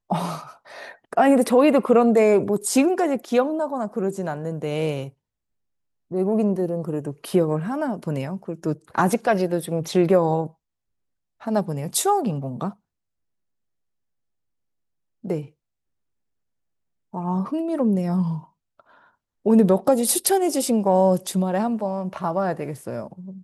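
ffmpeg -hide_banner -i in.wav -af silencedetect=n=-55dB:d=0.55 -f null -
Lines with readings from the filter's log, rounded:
silence_start: 5.13
silence_end: 6.11 | silence_duration: 0.98
silence_start: 10.54
silence_end: 11.40 | silence_duration: 0.86
silence_start: 12.76
silence_end: 15.23 | silence_duration: 2.47
silence_start: 15.51
silence_end: 17.13 | silence_duration: 1.62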